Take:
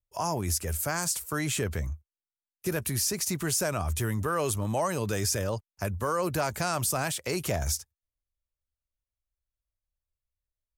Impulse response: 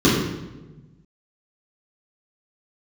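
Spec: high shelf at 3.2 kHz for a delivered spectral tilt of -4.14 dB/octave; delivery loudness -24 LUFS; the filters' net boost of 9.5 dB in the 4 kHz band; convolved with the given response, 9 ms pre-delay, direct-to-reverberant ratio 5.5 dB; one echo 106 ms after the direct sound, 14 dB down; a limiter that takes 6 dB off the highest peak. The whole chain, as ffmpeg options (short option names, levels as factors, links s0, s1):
-filter_complex "[0:a]highshelf=f=3200:g=5.5,equalizer=f=4000:t=o:g=8,alimiter=limit=0.211:level=0:latency=1,aecho=1:1:106:0.2,asplit=2[s0][s1];[1:a]atrim=start_sample=2205,adelay=9[s2];[s1][s2]afir=irnorm=-1:irlink=0,volume=0.0398[s3];[s0][s3]amix=inputs=2:normalize=0"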